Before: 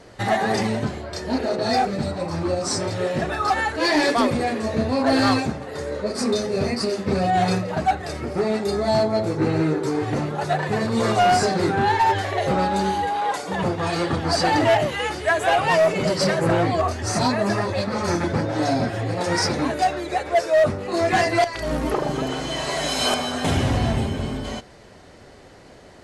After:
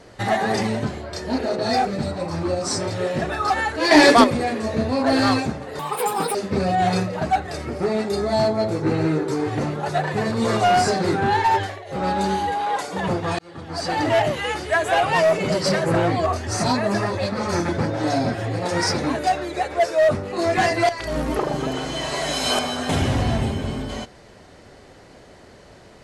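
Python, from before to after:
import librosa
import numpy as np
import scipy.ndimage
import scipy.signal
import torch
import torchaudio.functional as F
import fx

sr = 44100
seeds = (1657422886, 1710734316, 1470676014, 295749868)

y = fx.edit(x, sr, fx.clip_gain(start_s=3.91, length_s=0.33, db=7.5),
    fx.speed_span(start_s=5.79, length_s=1.11, speed=1.99),
    fx.fade_down_up(start_s=12.12, length_s=0.55, db=-18.5, fade_s=0.27),
    fx.fade_in_span(start_s=13.94, length_s=0.88), tone=tone)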